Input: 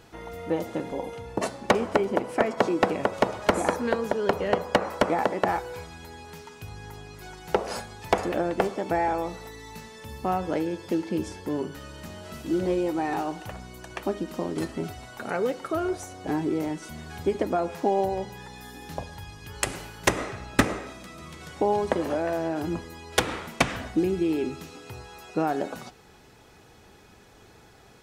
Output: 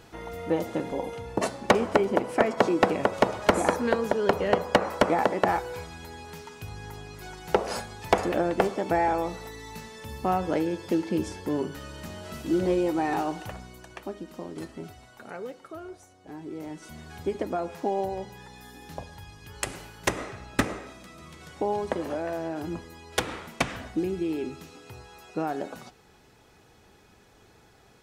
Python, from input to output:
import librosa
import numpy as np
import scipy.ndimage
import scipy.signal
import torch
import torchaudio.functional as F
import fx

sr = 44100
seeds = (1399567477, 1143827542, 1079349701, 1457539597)

y = fx.gain(x, sr, db=fx.line((13.41, 1.0), (14.08, -8.0), (14.93, -8.0), (16.25, -16.0), (16.91, -4.0)))